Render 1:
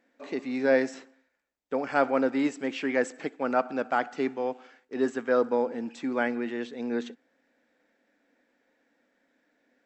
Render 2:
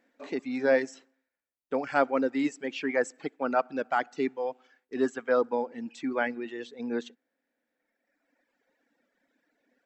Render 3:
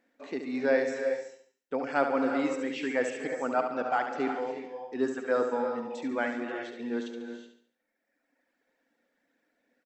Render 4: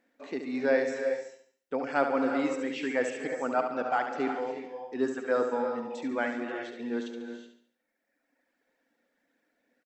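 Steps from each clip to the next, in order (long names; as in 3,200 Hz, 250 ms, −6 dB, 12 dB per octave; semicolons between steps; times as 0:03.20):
reverb reduction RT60 1.9 s
on a send: repeating echo 71 ms, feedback 42%, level −7.5 dB; on the sum: reverb whose tail is shaped and stops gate 400 ms rising, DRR 6 dB; level −2.5 dB
far-end echo of a speakerphone 210 ms, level −29 dB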